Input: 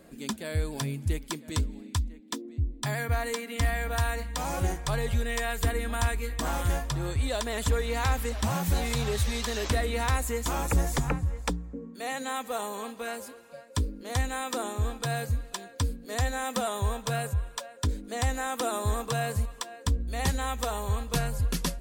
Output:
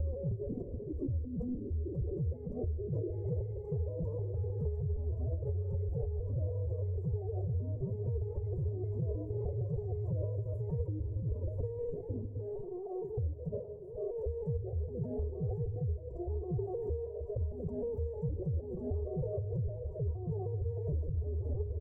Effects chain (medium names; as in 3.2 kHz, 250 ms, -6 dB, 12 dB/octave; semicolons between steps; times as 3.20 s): slices played last to first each 155 ms, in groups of 5; transient shaper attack -7 dB, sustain +10 dB; hum notches 60/120/180 Hz; comb 3.3 ms, depth 89%; formant-preserving pitch shift +10 st; inverse Chebyshev low-pass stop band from 1.3 kHz, stop band 50 dB; thinning echo 155 ms, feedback 70%, high-pass 310 Hz, level -17.5 dB; on a send at -16.5 dB: reverberation RT60 1.0 s, pre-delay 30 ms; on the sum: compression 6:1, threshold -32 dBFS, peak gain reduction 12.5 dB